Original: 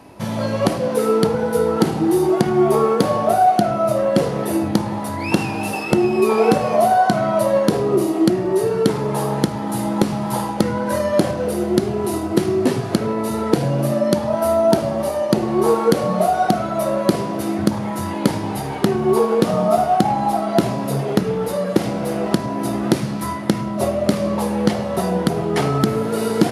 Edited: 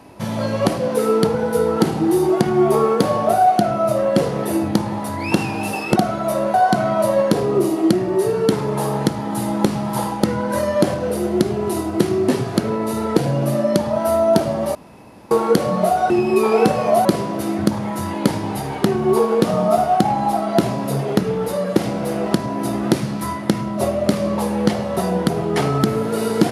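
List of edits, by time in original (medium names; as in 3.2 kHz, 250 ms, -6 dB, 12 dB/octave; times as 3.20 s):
5.96–6.91 s: swap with 16.47–17.05 s
15.12–15.68 s: room tone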